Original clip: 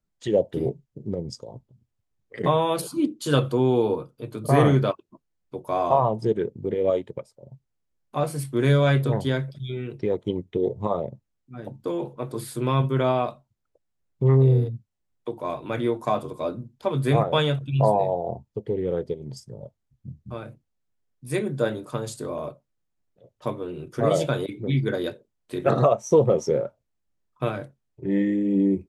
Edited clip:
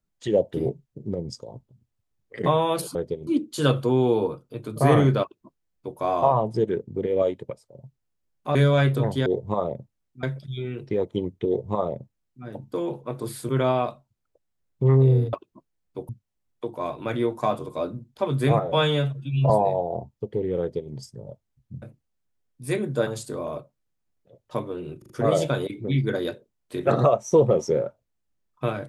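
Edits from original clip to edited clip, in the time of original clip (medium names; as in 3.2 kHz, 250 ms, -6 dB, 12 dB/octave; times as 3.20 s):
4.90–5.66 s: copy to 14.73 s
8.23–8.64 s: delete
10.59–11.56 s: copy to 9.35 s
12.61–12.89 s: delete
17.24–17.84 s: stretch 1.5×
18.94–19.26 s: copy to 2.95 s
20.16–20.45 s: delete
21.70–21.98 s: delete
23.89 s: stutter 0.04 s, 4 plays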